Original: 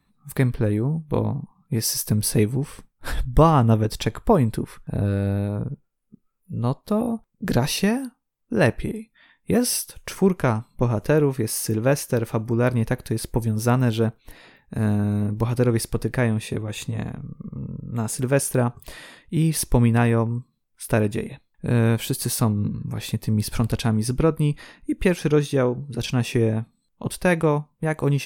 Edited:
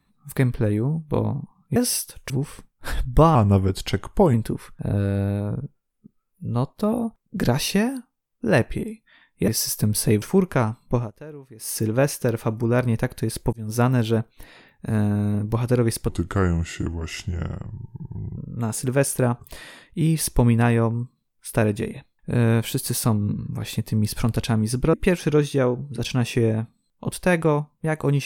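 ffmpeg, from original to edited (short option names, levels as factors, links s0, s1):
-filter_complex "[0:a]asplit=13[s0][s1][s2][s3][s4][s5][s6][s7][s8][s9][s10][s11][s12];[s0]atrim=end=1.762[s13];[s1]atrim=start=9.558:end=10.102[s14];[s2]atrim=start=2.498:end=3.554[s15];[s3]atrim=start=3.55:end=4.42,asetpts=PTS-STARTPTS,asetrate=38808,aresample=44100[s16];[s4]atrim=start=4.416:end=9.562[s17];[s5]atrim=start=1.758:end=2.502[s18];[s6]atrim=start=10.098:end=10.99,asetpts=PTS-STARTPTS,afade=t=out:st=0.732:d=0.16:silence=0.0944061[s19];[s7]atrim=start=10.99:end=11.46,asetpts=PTS-STARTPTS,volume=0.0944[s20];[s8]atrim=start=11.46:end=13.41,asetpts=PTS-STARTPTS,afade=t=in:d=0.16:silence=0.0944061,afade=t=out:st=1.946:d=0.004:c=hsin[s21];[s9]atrim=start=13.41:end=15.974,asetpts=PTS-STARTPTS,afade=t=in:d=0.27[s22];[s10]atrim=start=15.97:end=17.73,asetpts=PTS-STARTPTS,asetrate=33957,aresample=44100[s23];[s11]atrim=start=17.726:end=24.292[s24];[s12]atrim=start=24.918[s25];[s13][s14]acrossfade=d=0.004:c1=hsin:c2=hsin[s26];[s26][s15]acrossfade=d=0.004:c1=hsin:c2=hsin[s27];[s27][s16]acrossfade=d=0.004:c1=hsin:c2=hsin[s28];[s28][s17]acrossfade=d=0.004:c1=hsin:c2=hsin[s29];[s29][s18]acrossfade=d=0.004:c1=hsin:c2=hsin[s30];[s19][s20][s21][s22]concat=n=4:v=0:a=1[s31];[s30][s31]acrossfade=d=0.004:c1=hsin:c2=hsin[s32];[s32][s23]acrossfade=d=0.004:c1=hsin:c2=hsin[s33];[s33][s24]acrossfade=d=0.004:c1=hsin:c2=hsin[s34];[s34][s25]acrossfade=d=0.004:c1=hsin:c2=hsin"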